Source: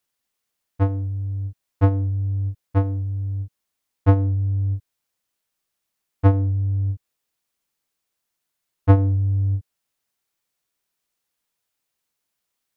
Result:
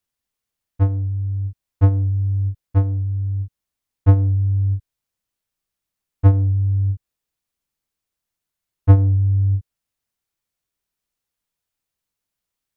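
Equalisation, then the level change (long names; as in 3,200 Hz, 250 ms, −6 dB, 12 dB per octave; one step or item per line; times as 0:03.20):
low-shelf EQ 140 Hz +12 dB
−4.5 dB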